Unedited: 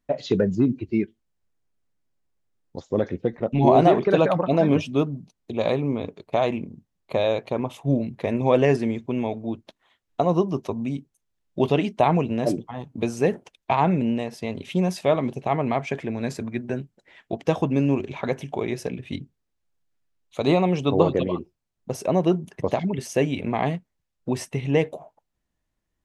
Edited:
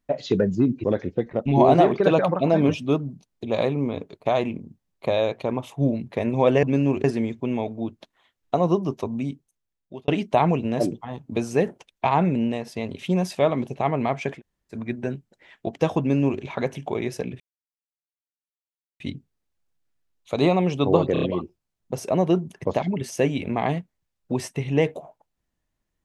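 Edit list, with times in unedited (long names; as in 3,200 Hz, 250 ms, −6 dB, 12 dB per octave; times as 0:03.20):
0:00.84–0:02.91: remove
0:10.94–0:11.74: fade out
0:16.03–0:16.40: fill with room tone, crossfade 0.10 s
0:17.66–0:18.07: duplicate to 0:08.70
0:19.06: splice in silence 1.60 s
0:21.19: stutter 0.03 s, 4 plays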